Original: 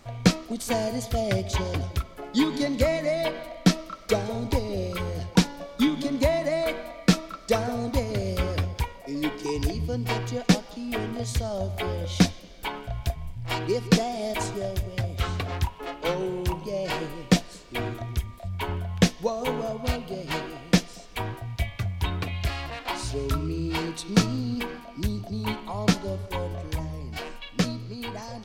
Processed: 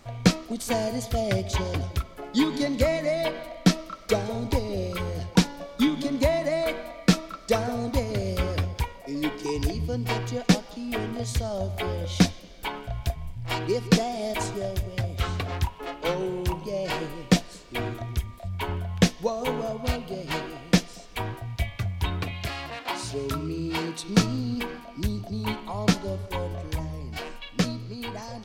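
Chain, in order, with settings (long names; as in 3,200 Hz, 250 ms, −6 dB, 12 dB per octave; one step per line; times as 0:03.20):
0:22.31–0:24.04: high-pass filter 110 Hz 12 dB per octave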